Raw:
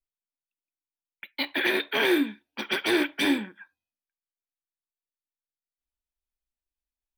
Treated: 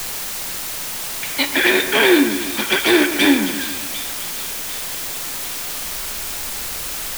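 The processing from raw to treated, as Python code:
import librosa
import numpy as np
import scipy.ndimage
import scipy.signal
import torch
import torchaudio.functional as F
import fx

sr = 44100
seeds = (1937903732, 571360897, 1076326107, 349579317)

y = x + 0.5 * 10.0 ** (-38.5 / 20.0) * np.sign(x)
y = fx.echo_split(y, sr, split_hz=2700.0, low_ms=137, high_ms=749, feedback_pct=52, wet_db=-11.0)
y = fx.quant_dither(y, sr, seeds[0], bits=6, dither='triangular')
y = F.gain(torch.from_numpy(y), 9.0).numpy()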